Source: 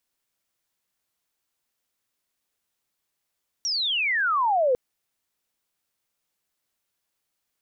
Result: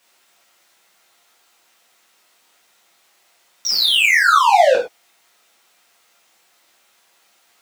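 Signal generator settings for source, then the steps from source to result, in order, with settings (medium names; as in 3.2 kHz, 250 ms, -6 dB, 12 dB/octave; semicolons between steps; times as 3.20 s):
sweep logarithmic 5.8 kHz -> 480 Hz -23.5 dBFS -> -17.5 dBFS 1.10 s
peaking EQ 690 Hz +3.5 dB 0.41 oct; overdrive pedal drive 27 dB, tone 3.5 kHz, clips at -14.5 dBFS; gated-style reverb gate 140 ms falling, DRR -5 dB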